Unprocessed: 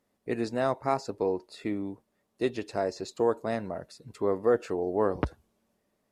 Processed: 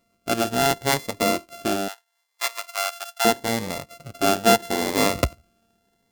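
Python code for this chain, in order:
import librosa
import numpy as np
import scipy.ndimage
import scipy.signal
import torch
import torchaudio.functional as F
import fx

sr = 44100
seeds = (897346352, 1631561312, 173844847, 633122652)

y = np.r_[np.sort(x[:len(x) // 64 * 64].reshape(-1, 64), axis=1).ravel(), x[len(x) // 64 * 64:]]
y = fx.highpass(y, sr, hz=830.0, slope=24, at=(1.88, 3.25))
y = fx.notch_cascade(y, sr, direction='rising', hz=0.77)
y = y * librosa.db_to_amplitude(8.5)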